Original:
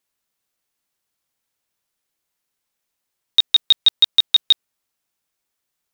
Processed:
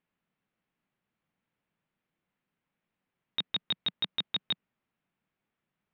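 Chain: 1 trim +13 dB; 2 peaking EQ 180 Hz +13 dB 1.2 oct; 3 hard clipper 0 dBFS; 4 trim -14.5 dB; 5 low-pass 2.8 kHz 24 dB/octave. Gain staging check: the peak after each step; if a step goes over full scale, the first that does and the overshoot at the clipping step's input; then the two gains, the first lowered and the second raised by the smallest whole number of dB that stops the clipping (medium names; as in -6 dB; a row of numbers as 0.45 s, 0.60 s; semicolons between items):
+7.5 dBFS, +8.0 dBFS, 0.0 dBFS, -14.5 dBFS, -18.5 dBFS; step 1, 8.0 dB; step 1 +5 dB, step 4 -6.5 dB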